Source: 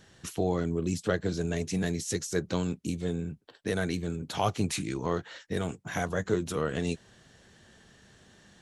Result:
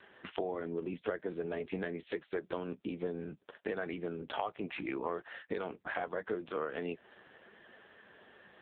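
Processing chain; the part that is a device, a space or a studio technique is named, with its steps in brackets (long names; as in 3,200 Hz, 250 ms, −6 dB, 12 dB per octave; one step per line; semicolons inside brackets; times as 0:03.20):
0:02.73–0:04.31: noise gate with hold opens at −54 dBFS
voicemail (band-pass filter 380–2,600 Hz; downward compressor 6 to 1, threshold −40 dBFS, peak gain reduction 16 dB; level +7.5 dB; AMR narrowband 5.9 kbit/s 8,000 Hz)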